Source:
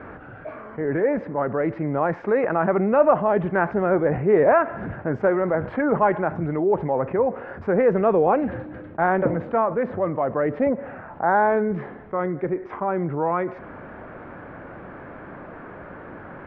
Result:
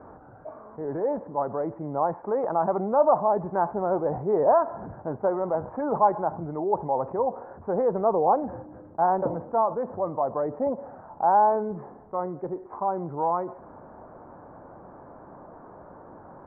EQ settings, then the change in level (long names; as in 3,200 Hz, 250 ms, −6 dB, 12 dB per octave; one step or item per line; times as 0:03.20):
transistor ladder low-pass 1,100 Hz, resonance 45%
dynamic equaliser 870 Hz, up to +4 dB, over −39 dBFS, Q 1.2
0.0 dB